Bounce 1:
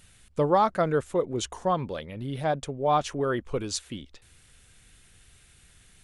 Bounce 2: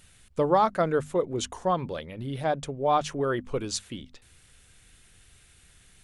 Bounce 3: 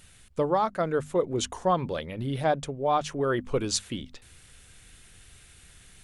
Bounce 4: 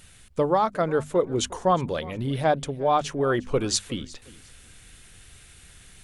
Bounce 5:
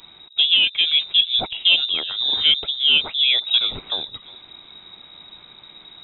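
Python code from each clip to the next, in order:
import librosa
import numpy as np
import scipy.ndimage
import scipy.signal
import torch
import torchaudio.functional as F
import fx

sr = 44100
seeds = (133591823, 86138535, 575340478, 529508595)

y1 = fx.hum_notches(x, sr, base_hz=50, count=5)
y2 = fx.rider(y1, sr, range_db=4, speed_s=0.5)
y3 = fx.echo_feedback(y2, sr, ms=359, feedback_pct=24, wet_db=-21)
y3 = F.gain(torch.from_numpy(y3), 3.0).numpy()
y4 = 10.0 ** (-8.5 / 20.0) * np.tanh(y3 / 10.0 ** (-8.5 / 20.0))
y4 = fx.peak_eq(y4, sr, hz=2000.0, db=-8.0, octaves=0.35)
y4 = fx.freq_invert(y4, sr, carrier_hz=3800)
y4 = F.gain(torch.from_numpy(y4), 5.5).numpy()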